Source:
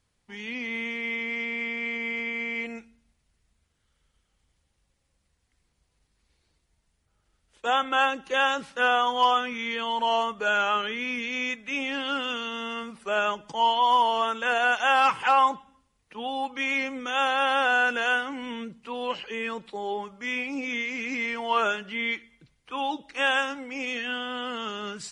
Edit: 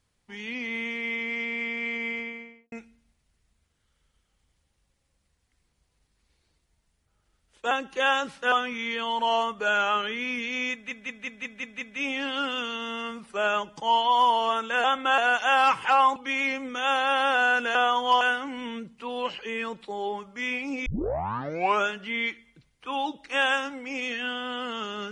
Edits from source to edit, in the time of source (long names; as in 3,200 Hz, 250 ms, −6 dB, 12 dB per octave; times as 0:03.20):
0:02.05–0:02.72: fade out and dull
0:07.71–0:08.05: move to 0:14.56
0:08.86–0:09.32: move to 0:18.06
0:11.53: stutter 0.18 s, 7 plays
0:15.54–0:16.47: remove
0:20.71: tape start 0.98 s